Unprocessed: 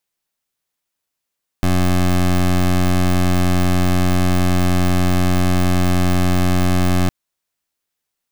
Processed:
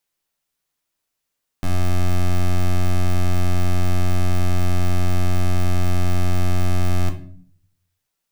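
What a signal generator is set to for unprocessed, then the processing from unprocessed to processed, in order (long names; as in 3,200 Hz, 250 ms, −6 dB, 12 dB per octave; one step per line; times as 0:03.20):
pulse wave 90.4 Hz, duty 19% −14.5 dBFS 5.46 s
brickwall limiter −22.5 dBFS
rectangular room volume 63 cubic metres, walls mixed, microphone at 0.36 metres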